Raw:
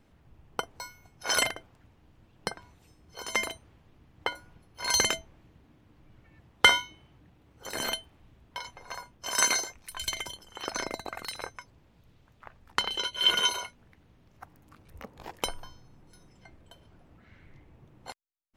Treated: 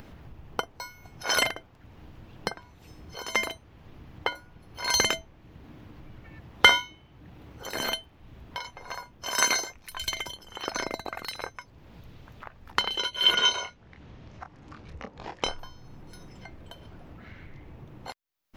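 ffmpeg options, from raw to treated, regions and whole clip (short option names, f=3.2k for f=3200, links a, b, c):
-filter_complex "[0:a]asettb=1/sr,asplit=3[a][b][c];[a]atrim=end=13.354[d];[b]atrim=start=13.35:end=15.59,asetpts=PTS-STARTPTS,afade=t=in:d=0.004:c=qsin,afade=t=out:st=2.236:d=0.004:c=qsin,lowpass=f=7.2k:w=0.5412,lowpass=f=7.2k:w=1.3066,asplit=2[e][f];[f]adelay=27,volume=-6.5dB[g];[e][g]amix=inputs=2:normalize=0,atrim=end_sample=98784[h];[c]atrim=start=15.586[i];[d][h]acrossfade=d=0.004:c1=hsin:c2=qsin[j];[j][i]acrossfade=d=0.004:c1=qsin:c2=hsin,equalizer=f=8.7k:w=1.8:g=-9,acompressor=mode=upward:threshold=-39dB:ratio=2.5,volume=2.5dB"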